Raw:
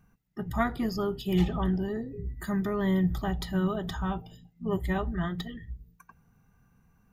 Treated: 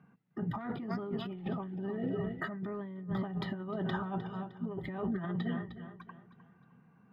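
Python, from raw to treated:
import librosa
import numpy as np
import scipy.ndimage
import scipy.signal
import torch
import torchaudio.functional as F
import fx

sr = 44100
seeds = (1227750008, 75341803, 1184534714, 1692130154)

y = scipy.signal.sosfilt(scipy.signal.butter(4, 140.0, 'highpass', fs=sr, output='sos'), x)
y = fx.air_absorb(y, sr, metres=430.0)
y = fx.echo_feedback(y, sr, ms=307, feedback_pct=37, wet_db=-14.0)
y = 10.0 ** (-16.5 / 20.0) * np.tanh(y / 10.0 ** (-16.5 / 20.0))
y = fx.small_body(y, sr, hz=(660.0, 1300.0, 1900.0, 2900.0), ring_ms=45, db=fx.line((1.97, 15.0), (2.59, 11.0)), at=(1.97, 2.59), fade=0.02)
y = fx.over_compress(y, sr, threshold_db=-37.0, ratio=-1.0)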